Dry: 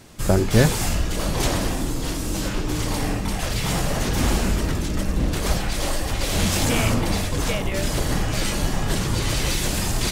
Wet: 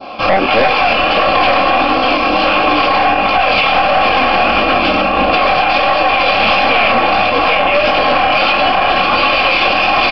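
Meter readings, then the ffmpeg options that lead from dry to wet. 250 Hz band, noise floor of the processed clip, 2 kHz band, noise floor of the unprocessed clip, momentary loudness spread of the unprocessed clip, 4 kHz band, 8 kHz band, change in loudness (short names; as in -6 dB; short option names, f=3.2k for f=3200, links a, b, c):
+4.5 dB, -14 dBFS, +17.5 dB, -26 dBFS, 6 LU, +12.5 dB, under -20 dB, +12.0 dB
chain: -filter_complex "[0:a]crystalizer=i=1.5:c=0,asplit=3[a][b][c];[a]bandpass=f=730:t=q:w=8,volume=0dB[d];[b]bandpass=f=1.09k:t=q:w=8,volume=-6dB[e];[c]bandpass=f=2.44k:t=q:w=8,volume=-9dB[f];[d][e][f]amix=inputs=3:normalize=0,aecho=1:1:3.7:0.59,acontrast=38,flanger=delay=18.5:depth=7.6:speed=1.5,aeval=exprs='(tanh(25.1*val(0)+0.5)-tanh(0.5))/25.1':c=same,bandreject=f=3.8k:w=14,aresample=11025,aresample=44100,adynamicequalizer=threshold=0.00282:dfrequency=2100:dqfactor=0.78:tfrequency=2100:tqfactor=0.78:attack=5:release=100:ratio=0.375:range=3:mode=boostabove:tftype=bell,asplit=2[g][h];[h]aecho=0:1:364:0.178[i];[g][i]amix=inputs=2:normalize=0,acompressor=threshold=-41dB:ratio=2,alimiter=level_in=33.5dB:limit=-1dB:release=50:level=0:latency=1,volume=-1dB"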